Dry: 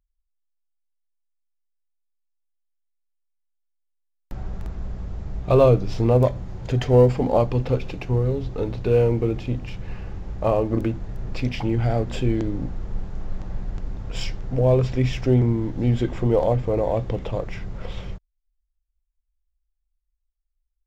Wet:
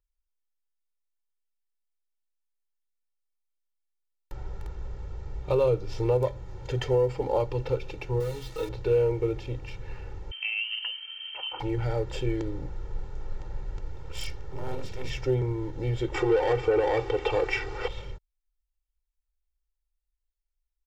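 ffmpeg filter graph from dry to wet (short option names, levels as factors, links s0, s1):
-filter_complex "[0:a]asettb=1/sr,asplit=3[s0][s1][s2];[s0]atrim=end=8.204[s3];[s1]atrim=start=8.2:end=8.69,asetpts=PTS-STARTPTS,afade=t=in:d=0.004:c=qsin,afade=t=out:st=0.486:d=0.004:c=qsin,tiltshelf=f=1300:g=-7.5,aecho=1:1:6.3:1,atrim=end_sample=21609,acrusher=bits=6:mix=0:aa=0.5[s4];[s2]atrim=start=8.686[s5];[s3][s4]acrossfade=d=0.004:c1=hsin:c2=qsin[s6];[s6][s5]acrossfade=d=0.004:c1=qsin:c2=hsin,asettb=1/sr,asplit=3[s7][s8][s9];[s7]atrim=end=10.314[s10];[s8]atrim=start=10.31:end=11.6,asetpts=PTS-STARTPTS,afade=t=in:d=0.004:c=qsin,afade=t=out:st=1.286:d=0.004:c=qsin,highpass=f=150:p=1,acompressor=threshold=0.0708:ratio=6:attack=3.2:release=140:knee=1:detection=peak,lowpass=f=2700:t=q:w=0.5098,lowpass=f=2700:t=q:w=0.6013,lowpass=f=2700:t=q:w=0.9,lowpass=f=2700:t=q:w=2.563,afreqshift=-3200[s11];[s9]atrim=start=11.596[s12];[s10][s11]acrossfade=d=0.004:c1=hsin:c2=qsin[s13];[s13][s12]acrossfade=d=0.004:c1=qsin:c2=hsin,asettb=1/sr,asplit=3[s14][s15][s16];[s14]atrim=end=13.884[s17];[s15]atrim=start=13.88:end=15.1,asetpts=PTS-STARTPTS,afade=t=in:d=0.004:c=qsin,afade=t=out:st=1.216:d=0.004:c=qsin,equalizer=f=190:w=4.6:g=-10,acrossover=split=160|3000[s18][s19][s20];[s19]acompressor=threshold=0.0126:ratio=2:attack=3.2:release=140:knee=2.83:detection=peak[s21];[s18][s21][s20]amix=inputs=3:normalize=0,aeval=exprs='abs(val(0))':c=same[s22];[s16]atrim=start=15.096[s23];[s17][s22]acrossfade=d=0.004:c1=hsin:c2=qsin[s24];[s24][s23]acrossfade=d=0.004:c1=qsin:c2=hsin,asettb=1/sr,asplit=3[s25][s26][s27];[s25]atrim=end=16.144[s28];[s26]atrim=start=16.14:end=17.88,asetpts=PTS-STARTPTS,afade=t=in:d=0.004:c=qsin,afade=t=out:st=1.736:d=0.004:c=qsin,asplit=2[s29][s30];[s30]highpass=f=720:p=1,volume=10,asoftclip=type=tanh:threshold=0.376[s31];[s29][s31]amix=inputs=2:normalize=0,lowpass=f=3700:p=1,volume=0.501,aecho=1:1:2.6:0.72,atrim=end_sample=76734[s32];[s27]atrim=start=17.876[s33];[s28][s32]acrossfade=d=0.004:c1=hsin:c2=qsin[s34];[s34][s33]acrossfade=d=0.004:c1=qsin:c2=hsin,lowshelf=f=280:g=-5,aecho=1:1:2.2:0.92,alimiter=limit=0.355:level=0:latency=1:release=297,volume=0.501"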